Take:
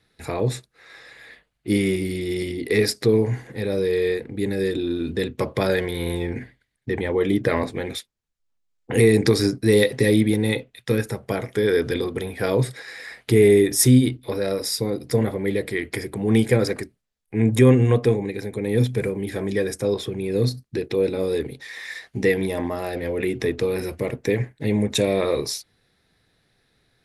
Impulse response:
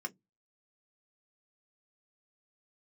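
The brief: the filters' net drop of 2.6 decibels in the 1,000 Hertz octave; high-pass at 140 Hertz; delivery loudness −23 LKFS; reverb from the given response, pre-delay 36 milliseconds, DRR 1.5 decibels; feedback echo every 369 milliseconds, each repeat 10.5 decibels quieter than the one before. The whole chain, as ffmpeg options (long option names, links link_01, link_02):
-filter_complex "[0:a]highpass=140,equalizer=frequency=1000:width_type=o:gain=-3.5,aecho=1:1:369|738|1107:0.299|0.0896|0.0269,asplit=2[link_01][link_02];[1:a]atrim=start_sample=2205,adelay=36[link_03];[link_02][link_03]afir=irnorm=-1:irlink=0,volume=-2dB[link_04];[link_01][link_04]amix=inputs=2:normalize=0,volume=-2.5dB"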